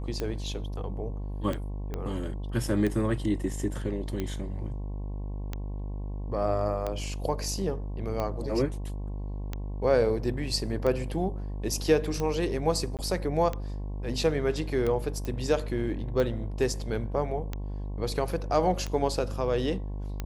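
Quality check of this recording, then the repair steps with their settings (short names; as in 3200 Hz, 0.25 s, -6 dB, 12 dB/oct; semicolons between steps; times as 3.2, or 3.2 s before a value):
buzz 50 Hz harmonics 22 -34 dBFS
tick 45 rpm -18 dBFS
1.94 pop -21 dBFS
12.97–12.99 gap 18 ms
15.25 pop -21 dBFS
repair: de-click; de-hum 50 Hz, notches 22; interpolate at 12.97, 18 ms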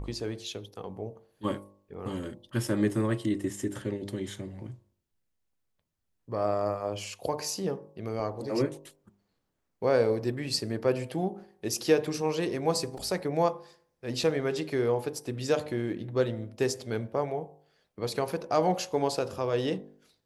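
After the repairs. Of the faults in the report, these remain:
1.94 pop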